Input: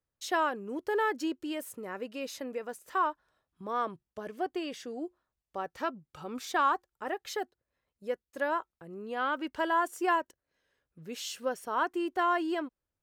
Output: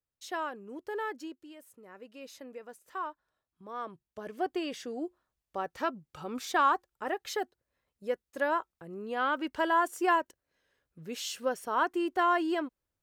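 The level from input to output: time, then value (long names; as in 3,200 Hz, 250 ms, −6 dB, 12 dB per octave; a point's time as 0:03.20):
0:01.12 −6.5 dB
0:01.55 −15 dB
0:02.33 −8 dB
0:03.72 −8 dB
0:04.45 +1.5 dB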